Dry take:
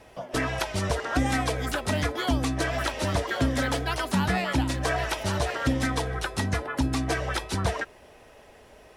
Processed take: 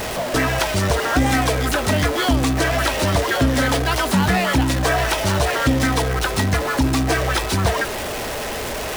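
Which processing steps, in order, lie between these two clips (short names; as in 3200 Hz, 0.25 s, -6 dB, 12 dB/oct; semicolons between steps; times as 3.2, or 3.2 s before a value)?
zero-crossing step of -26 dBFS; gain +5 dB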